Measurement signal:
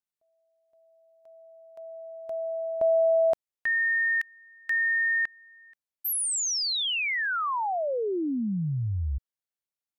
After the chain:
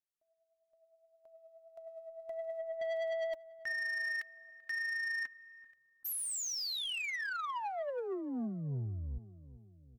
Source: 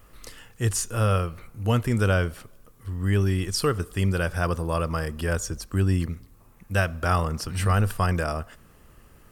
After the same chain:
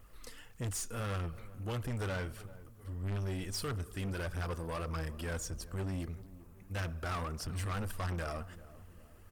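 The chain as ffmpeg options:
ffmpeg -i in.wav -filter_complex "[0:a]aphaser=in_gain=1:out_gain=1:delay=4.6:decay=0.43:speed=1.6:type=triangular,asoftclip=type=tanh:threshold=-25.5dB,asplit=2[link_01][link_02];[link_02]adelay=388,lowpass=frequency=850:poles=1,volume=-16dB,asplit=2[link_03][link_04];[link_04]adelay=388,lowpass=frequency=850:poles=1,volume=0.53,asplit=2[link_05][link_06];[link_06]adelay=388,lowpass=frequency=850:poles=1,volume=0.53,asplit=2[link_07][link_08];[link_08]adelay=388,lowpass=frequency=850:poles=1,volume=0.53,asplit=2[link_09][link_10];[link_10]adelay=388,lowpass=frequency=850:poles=1,volume=0.53[link_11];[link_01][link_03][link_05][link_07][link_09][link_11]amix=inputs=6:normalize=0,volume=-8dB" out.wav

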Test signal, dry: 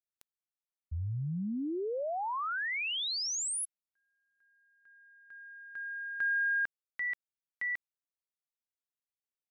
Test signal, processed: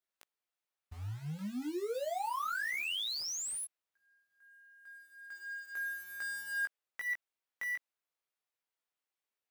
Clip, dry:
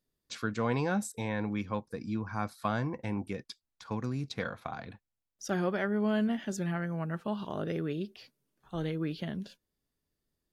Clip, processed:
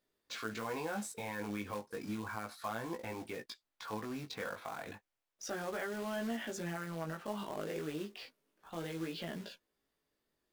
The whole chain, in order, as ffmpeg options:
ffmpeg -i in.wav -af "bass=frequency=250:gain=-14,treble=frequency=4000:gain=-8,acrusher=bits=3:mode=log:mix=0:aa=0.000001,acompressor=threshold=-45dB:ratio=2.5:attack=0.8:release=81:knee=1:detection=peak,flanger=delay=17.5:depth=2.3:speed=0.32,volume=9.5dB" out.wav

